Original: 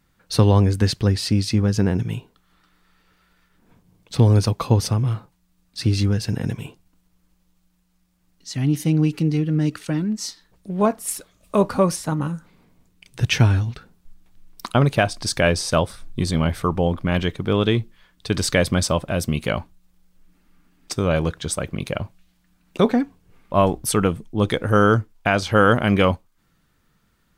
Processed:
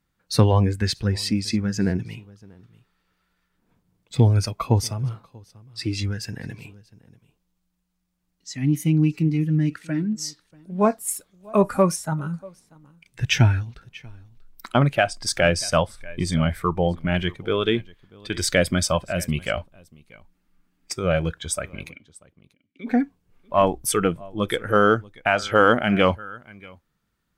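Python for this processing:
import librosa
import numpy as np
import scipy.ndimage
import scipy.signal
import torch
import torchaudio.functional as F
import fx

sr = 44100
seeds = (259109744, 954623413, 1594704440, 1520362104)

p1 = fx.vowel_filter(x, sr, vowel='i', at=(21.89, 22.86), fade=0.02)
p2 = p1 + fx.echo_single(p1, sr, ms=638, db=-18.0, dry=0)
p3 = fx.noise_reduce_blind(p2, sr, reduce_db=10)
y = fx.cheby_harmonics(p3, sr, harmonics=(4, 6), levels_db=(-36, -38), full_scale_db=-4.5)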